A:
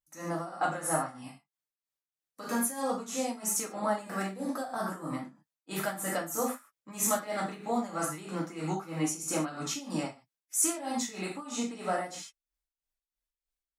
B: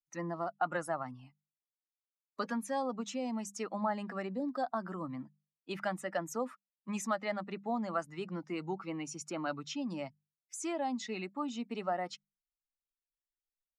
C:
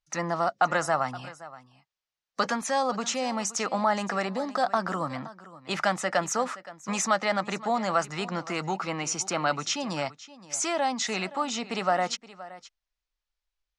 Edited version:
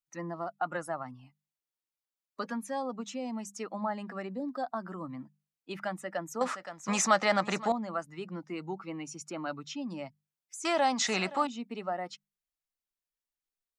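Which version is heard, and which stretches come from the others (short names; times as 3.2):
B
6.41–7.72 from C
10.65–11.47 from C
not used: A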